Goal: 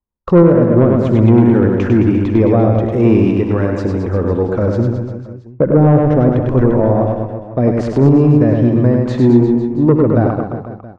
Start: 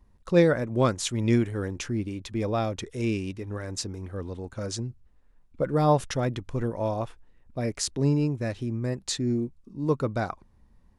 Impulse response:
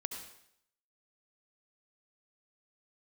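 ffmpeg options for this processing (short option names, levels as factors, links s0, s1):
-filter_complex "[0:a]agate=range=0.00891:threshold=0.00562:ratio=16:detection=peak,aemphasis=mode=production:type=bsi,deesser=0.95,lowpass=1300,lowshelf=f=120:g=7,acrossover=split=460[s0][s1];[s1]acompressor=threshold=0.00794:ratio=12[s2];[s0][s2]amix=inputs=2:normalize=0,asoftclip=type=tanh:threshold=0.0708,aecho=1:1:100|215|347.2|499.3|674.2:0.631|0.398|0.251|0.158|0.1[s3];[1:a]atrim=start_sample=2205,atrim=end_sample=3087[s4];[s3][s4]afir=irnorm=-1:irlink=0,alimiter=level_in=15.8:limit=0.891:release=50:level=0:latency=1,volume=0.891"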